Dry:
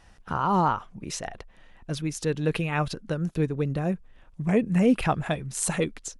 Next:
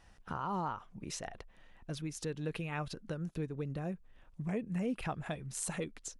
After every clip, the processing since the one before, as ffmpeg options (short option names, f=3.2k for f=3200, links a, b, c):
-af "acompressor=threshold=-32dB:ratio=2,volume=-6.5dB"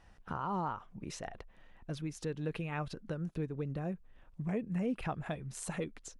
-af "highshelf=f=3.6k:g=-7.5,volume=1dB"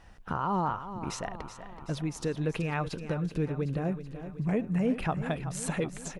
-af "aecho=1:1:378|756|1134|1512|1890|2268:0.266|0.152|0.0864|0.0493|0.0281|0.016,volume=6.5dB"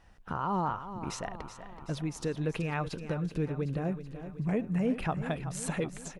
-af "dynaudnorm=f=200:g=3:m=4dB,volume=-5.5dB"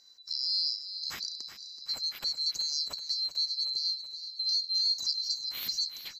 -af "afftfilt=real='real(if(lt(b,736),b+184*(1-2*mod(floor(b/184),2)),b),0)':imag='imag(if(lt(b,736),b+184*(1-2*mod(floor(b/184),2)),b),0)':win_size=2048:overlap=0.75"